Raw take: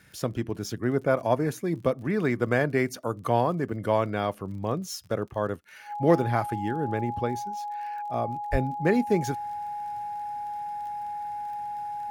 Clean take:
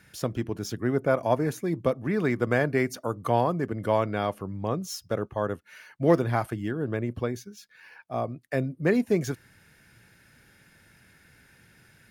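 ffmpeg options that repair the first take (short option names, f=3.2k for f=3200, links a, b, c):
-filter_complex "[0:a]adeclick=t=4,bandreject=f=830:w=30,asplit=3[a][b][c];[a]afade=t=out:st=8.51:d=0.02[d];[b]highpass=f=140:w=0.5412,highpass=f=140:w=1.3066,afade=t=in:st=8.51:d=0.02,afade=t=out:st=8.63:d=0.02[e];[c]afade=t=in:st=8.63:d=0.02[f];[d][e][f]amix=inputs=3:normalize=0"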